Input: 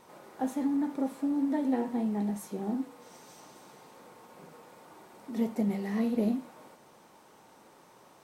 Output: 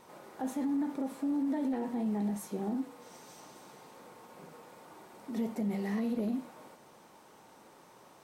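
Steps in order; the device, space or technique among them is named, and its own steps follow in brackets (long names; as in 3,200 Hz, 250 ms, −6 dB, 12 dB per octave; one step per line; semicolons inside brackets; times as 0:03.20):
clipper into limiter (hard clipping −20 dBFS, distortion −33 dB; brickwall limiter −26 dBFS, peak gain reduction 6 dB)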